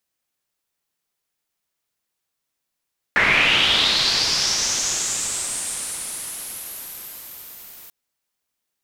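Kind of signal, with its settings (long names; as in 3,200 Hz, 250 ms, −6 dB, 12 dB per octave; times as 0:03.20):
filter sweep on noise white, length 4.74 s lowpass, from 1,800 Hz, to 15,000 Hz, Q 4.6, linear, gain ramp −32.5 dB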